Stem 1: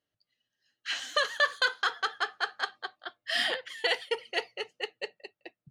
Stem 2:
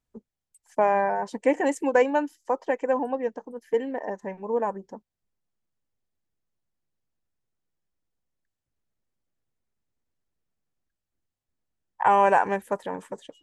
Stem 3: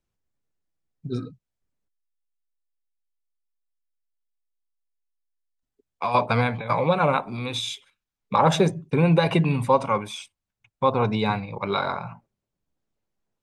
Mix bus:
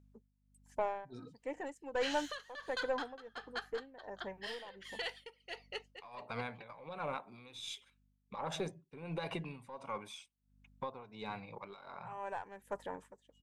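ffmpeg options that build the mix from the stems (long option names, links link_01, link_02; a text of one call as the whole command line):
ffmpeg -i stem1.wav -i stem2.wav -i stem3.wav -filter_complex "[0:a]adelay=1150,volume=-1dB[link_01];[1:a]aeval=exprs='val(0)+0.00355*(sin(2*PI*50*n/s)+sin(2*PI*2*50*n/s)/2+sin(2*PI*3*50*n/s)/3+sin(2*PI*4*50*n/s)/4+sin(2*PI*5*50*n/s)/5)':channel_layout=same,lowshelf=frequency=250:gain=-6.5,volume=-8dB[link_02];[2:a]volume=-5.5dB,asplit=2[link_03][link_04];[link_04]apad=whole_len=596477[link_05];[link_02][link_05]sidechaincompress=threshold=-59dB:ratio=10:attack=40:release=240[link_06];[link_01][link_03]amix=inputs=2:normalize=0,lowshelf=frequency=170:gain=-11.5,alimiter=level_in=2.5dB:limit=-24dB:level=0:latency=1:release=486,volume=-2.5dB,volume=0dB[link_07];[link_06][link_07]amix=inputs=2:normalize=0,aeval=exprs='(tanh(14.1*val(0)+0.3)-tanh(0.3))/14.1':channel_layout=same,tremolo=f=1.4:d=0.83" out.wav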